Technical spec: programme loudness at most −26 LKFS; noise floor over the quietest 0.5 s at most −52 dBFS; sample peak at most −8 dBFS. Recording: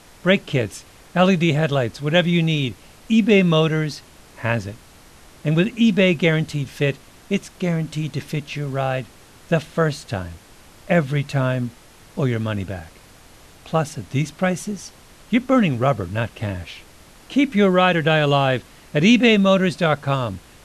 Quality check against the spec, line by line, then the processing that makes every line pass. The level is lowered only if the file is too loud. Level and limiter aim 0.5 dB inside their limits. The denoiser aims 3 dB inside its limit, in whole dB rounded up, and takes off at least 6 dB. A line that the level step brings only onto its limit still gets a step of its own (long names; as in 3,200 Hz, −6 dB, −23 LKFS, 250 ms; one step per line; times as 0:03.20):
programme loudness −20.0 LKFS: out of spec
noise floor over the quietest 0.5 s −47 dBFS: out of spec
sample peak −3.5 dBFS: out of spec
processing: level −6.5 dB